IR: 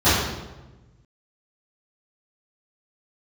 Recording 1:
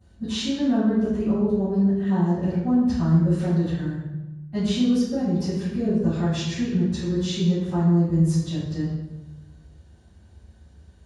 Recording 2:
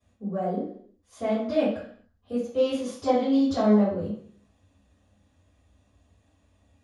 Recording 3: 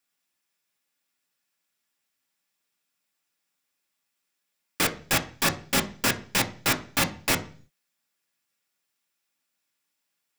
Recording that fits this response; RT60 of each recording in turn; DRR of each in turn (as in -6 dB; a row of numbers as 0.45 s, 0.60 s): 1; 1.1 s, 0.60 s, 0.40 s; -18.0 dB, -14.5 dB, 5.0 dB